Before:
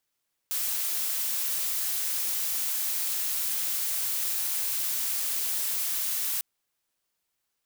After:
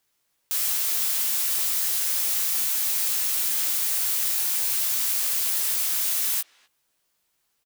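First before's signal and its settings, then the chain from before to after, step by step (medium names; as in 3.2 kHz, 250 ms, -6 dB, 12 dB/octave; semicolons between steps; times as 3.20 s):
noise blue, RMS -29 dBFS 5.90 s
in parallel at 0 dB: peak limiter -25.5 dBFS; on the sum: doubling 16 ms -5.5 dB; speakerphone echo 250 ms, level -21 dB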